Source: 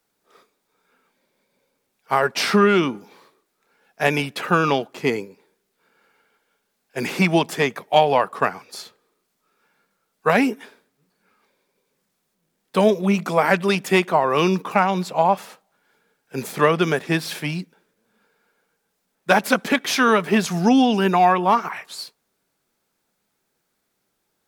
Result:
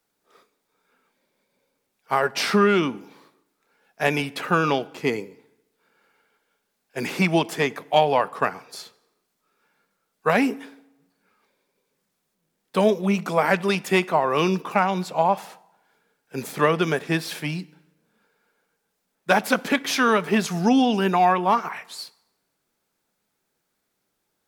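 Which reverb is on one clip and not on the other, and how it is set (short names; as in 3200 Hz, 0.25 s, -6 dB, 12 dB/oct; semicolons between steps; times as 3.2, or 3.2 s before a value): FDN reverb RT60 0.98 s, low-frequency decay 0.95×, high-frequency decay 0.8×, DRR 19.5 dB; gain -2.5 dB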